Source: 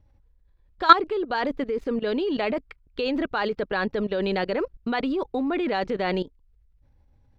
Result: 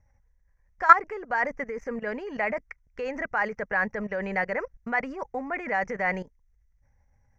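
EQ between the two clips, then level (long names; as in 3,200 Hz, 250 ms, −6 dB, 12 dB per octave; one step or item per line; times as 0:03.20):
drawn EQ curve 210 Hz 0 dB, 330 Hz −11 dB, 500 Hz +1 dB, 790 Hz +5 dB, 1,300 Hz +3 dB, 2,000 Hz +13 dB, 3,800 Hz −26 dB, 5,900 Hz +15 dB, 8,700 Hz −5 dB
−5.0 dB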